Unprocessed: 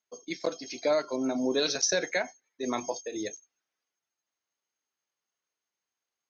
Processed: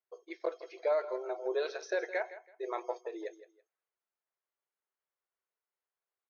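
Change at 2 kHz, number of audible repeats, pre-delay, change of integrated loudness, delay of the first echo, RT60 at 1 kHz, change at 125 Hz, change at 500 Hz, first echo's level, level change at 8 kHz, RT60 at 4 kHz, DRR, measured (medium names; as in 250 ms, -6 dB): -6.5 dB, 2, no reverb, -6.5 dB, 164 ms, no reverb, under -40 dB, -3.5 dB, -15.0 dB, no reading, no reverb, no reverb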